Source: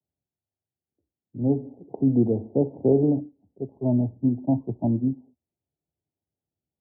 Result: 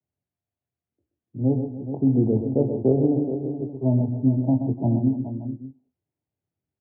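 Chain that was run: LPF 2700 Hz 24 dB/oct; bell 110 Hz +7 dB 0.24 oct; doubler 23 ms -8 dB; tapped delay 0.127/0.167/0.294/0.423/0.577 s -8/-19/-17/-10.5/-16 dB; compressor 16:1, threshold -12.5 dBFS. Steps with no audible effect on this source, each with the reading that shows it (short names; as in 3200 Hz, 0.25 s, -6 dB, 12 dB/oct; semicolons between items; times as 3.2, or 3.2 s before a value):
LPF 2700 Hz: input band ends at 760 Hz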